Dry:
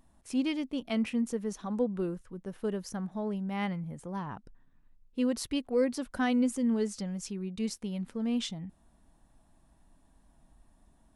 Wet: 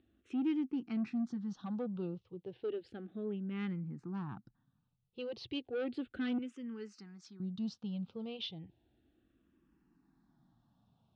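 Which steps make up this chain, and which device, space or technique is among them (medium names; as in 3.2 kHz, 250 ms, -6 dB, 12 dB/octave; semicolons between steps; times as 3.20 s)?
6.38–7.40 s: high-pass 1.2 kHz 6 dB/octave; barber-pole phaser into a guitar amplifier (barber-pole phaser -0.33 Hz; saturation -30 dBFS, distortion -11 dB; cabinet simulation 100–4100 Hz, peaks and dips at 120 Hz +7 dB, 340 Hz +6 dB, 620 Hz -10 dB, 1 kHz -9 dB, 1.5 kHz +6 dB, 2.7 kHz +8 dB); high-order bell 2 kHz -8 dB 1.2 oct; trim -1 dB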